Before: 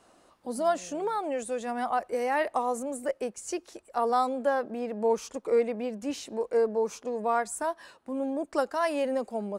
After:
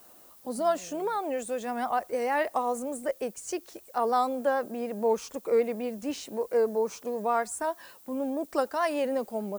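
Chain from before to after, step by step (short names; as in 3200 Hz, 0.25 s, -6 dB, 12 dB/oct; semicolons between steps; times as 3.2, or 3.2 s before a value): vibrato 6.6 Hz 46 cents; added noise violet -55 dBFS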